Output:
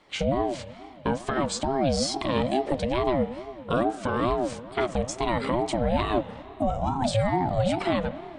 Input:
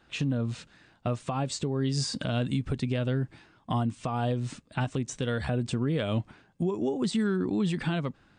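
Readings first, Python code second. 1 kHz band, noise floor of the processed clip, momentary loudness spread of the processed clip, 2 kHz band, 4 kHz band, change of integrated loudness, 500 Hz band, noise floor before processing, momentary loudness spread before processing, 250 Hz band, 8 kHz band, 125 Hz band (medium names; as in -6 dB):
+10.0 dB, -44 dBFS, 6 LU, +4.0 dB, +3.5 dB, +3.5 dB, +7.0 dB, -63 dBFS, 6 LU, +1.0 dB, +3.5 dB, -2.5 dB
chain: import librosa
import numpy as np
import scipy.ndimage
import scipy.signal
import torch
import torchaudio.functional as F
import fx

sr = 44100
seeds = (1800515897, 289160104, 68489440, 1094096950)

y = fx.hum_notches(x, sr, base_hz=50, count=8)
y = fx.rev_spring(y, sr, rt60_s=3.2, pass_ms=(30, 57), chirp_ms=45, drr_db=13.0)
y = fx.ring_lfo(y, sr, carrier_hz=440.0, swing_pct=25, hz=2.3)
y = y * 10.0 ** (6.5 / 20.0)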